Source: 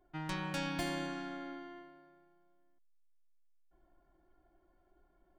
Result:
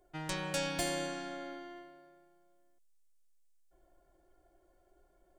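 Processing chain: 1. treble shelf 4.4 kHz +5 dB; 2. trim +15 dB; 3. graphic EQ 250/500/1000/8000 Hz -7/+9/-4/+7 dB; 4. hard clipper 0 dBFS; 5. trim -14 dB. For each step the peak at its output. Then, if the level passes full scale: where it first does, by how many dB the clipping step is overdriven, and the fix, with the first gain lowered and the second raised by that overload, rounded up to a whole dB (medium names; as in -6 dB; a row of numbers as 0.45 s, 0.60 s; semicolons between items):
-22.5 dBFS, -7.5 dBFS, -5.0 dBFS, -5.0 dBFS, -19.0 dBFS; nothing clips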